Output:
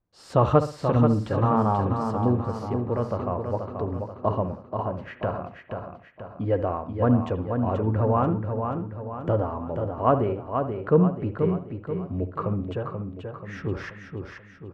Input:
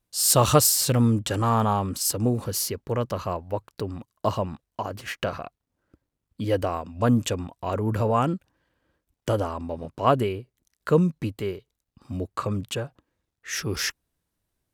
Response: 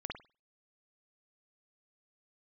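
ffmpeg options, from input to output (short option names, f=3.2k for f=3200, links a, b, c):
-filter_complex "[0:a]lowpass=1.3k,aecho=1:1:483|966|1449|1932|2415|2898:0.501|0.241|0.115|0.0554|0.0266|0.0128,asplit=2[a][b];[1:a]atrim=start_sample=2205,asetrate=40131,aresample=44100,adelay=11[c];[b][c]afir=irnorm=-1:irlink=0,volume=-11dB[d];[a][d]amix=inputs=2:normalize=0"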